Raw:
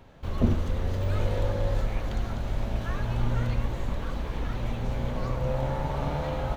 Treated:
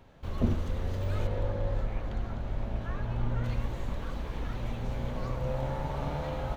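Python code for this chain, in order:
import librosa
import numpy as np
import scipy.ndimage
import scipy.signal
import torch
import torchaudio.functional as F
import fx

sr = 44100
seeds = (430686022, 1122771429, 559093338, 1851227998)

y = fx.high_shelf(x, sr, hz=3900.0, db=-12.0, at=(1.27, 3.44))
y = y * 10.0 ** (-4.0 / 20.0)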